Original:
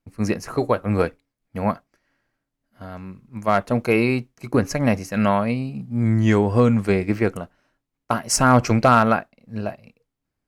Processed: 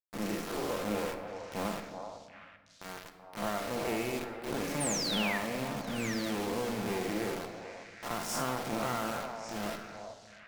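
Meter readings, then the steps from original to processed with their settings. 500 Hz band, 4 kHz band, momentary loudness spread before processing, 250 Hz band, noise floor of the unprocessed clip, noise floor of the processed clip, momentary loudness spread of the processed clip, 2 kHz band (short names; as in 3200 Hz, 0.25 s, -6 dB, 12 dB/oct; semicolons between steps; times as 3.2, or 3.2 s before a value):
-13.5 dB, -3.0 dB, 18 LU, -15.0 dB, -81 dBFS, -55 dBFS, 15 LU, -10.0 dB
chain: time blur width 0.134 s; HPF 220 Hz 12 dB/oct; high shelf 2100 Hz -6 dB; notches 60/120/180/240/300/360 Hz; compressor 12:1, threshold -27 dBFS, peak gain reduction 14 dB; requantised 6-bit, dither none; one-sided clip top -36.5 dBFS; painted sound fall, 4.8–5.38, 1700–9600 Hz -34 dBFS; on a send: delay with a stepping band-pass 0.381 s, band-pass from 730 Hz, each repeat 1.4 oct, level -4 dB; on the sum: shoebox room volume 1200 m³, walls mixed, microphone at 0.81 m; gain -1.5 dB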